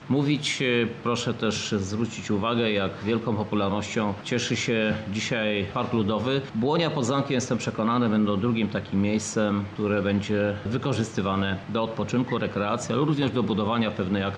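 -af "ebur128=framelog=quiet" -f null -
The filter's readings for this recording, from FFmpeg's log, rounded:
Integrated loudness:
  I:         -25.7 LUFS
  Threshold: -35.7 LUFS
Loudness range:
  LRA:         1.5 LU
  Threshold: -45.7 LUFS
  LRA low:   -26.4 LUFS
  LRA high:  -24.9 LUFS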